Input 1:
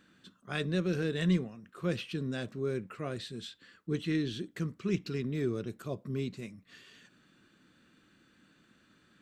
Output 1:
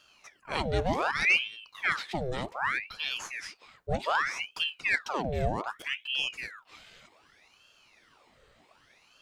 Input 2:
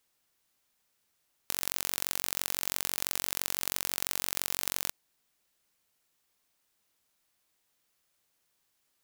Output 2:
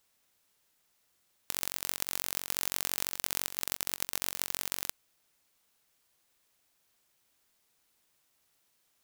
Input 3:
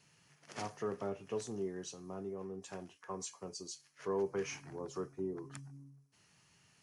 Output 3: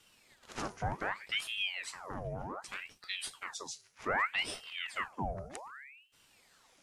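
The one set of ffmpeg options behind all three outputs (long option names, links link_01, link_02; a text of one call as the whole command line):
ffmpeg -i in.wav -af "acontrast=72,aeval=exprs='val(0)*sin(2*PI*1600*n/s+1600*0.85/0.65*sin(2*PI*0.65*n/s))':channel_layout=same,volume=-1dB" out.wav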